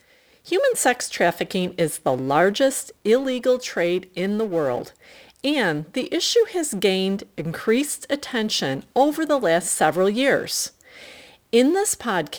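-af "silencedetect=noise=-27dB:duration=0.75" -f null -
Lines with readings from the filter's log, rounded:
silence_start: 10.67
silence_end: 11.53 | silence_duration: 0.87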